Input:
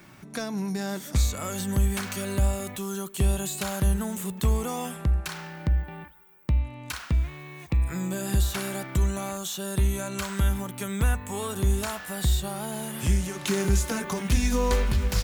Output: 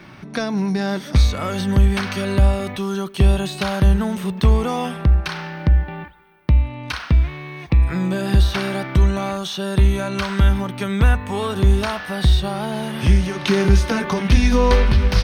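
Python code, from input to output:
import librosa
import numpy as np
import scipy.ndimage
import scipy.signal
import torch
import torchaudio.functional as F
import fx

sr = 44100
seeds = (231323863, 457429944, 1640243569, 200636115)

y = scipy.signal.savgol_filter(x, 15, 4, mode='constant')
y = y * librosa.db_to_amplitude(9.0)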